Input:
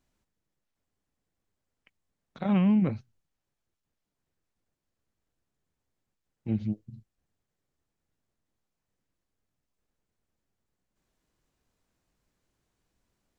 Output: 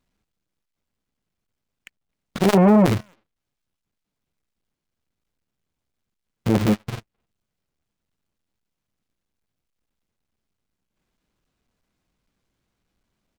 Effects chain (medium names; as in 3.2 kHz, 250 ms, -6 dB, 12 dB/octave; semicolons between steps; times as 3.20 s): square wave that keeps the level; peaking EQ 3 kHz +5.5 dB 2.7 oct; speakerphone echo 260 ms, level -29 dB; waveshaping leveller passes 3; peaking EQ 200 Hz +3.5 dB 0.72 oct; band-stop 1.8 kHz, Q 23; transformer saturation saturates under 480 Hz; trim +1.5 dB